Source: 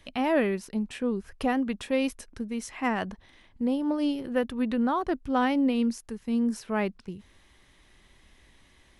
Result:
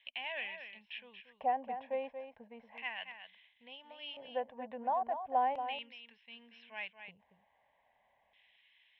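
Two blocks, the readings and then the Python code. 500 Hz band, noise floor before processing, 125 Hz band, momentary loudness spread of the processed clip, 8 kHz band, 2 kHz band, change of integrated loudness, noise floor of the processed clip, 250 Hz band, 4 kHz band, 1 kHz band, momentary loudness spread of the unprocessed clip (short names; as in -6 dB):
-11.5 dB, -60 dBFS, n/a, 19 LU, under -35 dB, -8.0 dB, -10.0 dB, -74 dBFS, -28.5 dB, -4.5 dB, -3.0 dB, 10 LU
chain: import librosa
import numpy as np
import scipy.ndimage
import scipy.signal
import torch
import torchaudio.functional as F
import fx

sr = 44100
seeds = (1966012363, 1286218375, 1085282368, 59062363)

p1 = scipy.signal.sosfilt(scipy.signal.cheby1(8, 1.0, 5300.0, 'lowpass', fs=sr, output='sos'), x)
p2 = fx.low_shelf(p1, sr, hz=390.0, db=-4.0)
p3 = fx.fixed_phaser(p2, sr, hz=1300.0, stages=6)
p4 = fx.filter_lfo_bandpass(p3, sr, shape='square', hz=0.36, low_hz=720.0, high_hz=3000.0, q=2.1)
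p5 = p4 + fx.echo_single(p4, sr, ms=232, db=-9.0, dry=0)
y = p5 * 10.0 ** (1.5 / 20.0)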